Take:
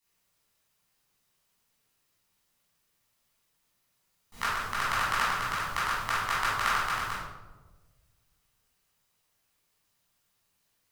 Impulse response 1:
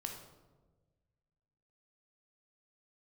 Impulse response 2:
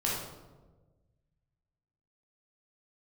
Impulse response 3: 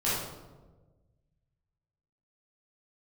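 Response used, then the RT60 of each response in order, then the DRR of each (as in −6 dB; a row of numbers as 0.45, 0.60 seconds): 3; 1.3, 1.3, 1.3 seconds; 2.0, −6.0, −10.5 decibels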